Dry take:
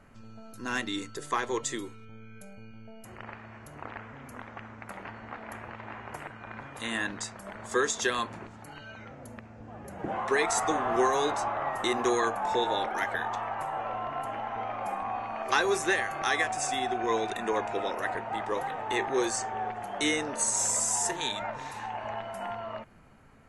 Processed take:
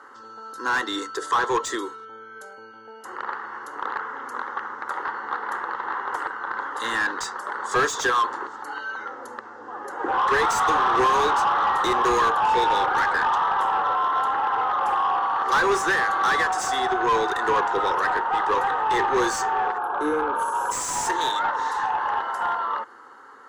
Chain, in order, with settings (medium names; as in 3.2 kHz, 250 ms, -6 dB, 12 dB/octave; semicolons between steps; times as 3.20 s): frequency weighting A; time-frequency box 19.78–20.72 s, 1.7–10 kHz -26 dB; treble shelf 8.6 kHz -2.5 dB; static phaser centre 650 Hz, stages 6; overdrive pedal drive 24 dB, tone 1.8 kHz, clips at -14 dBFS; trim +3 dB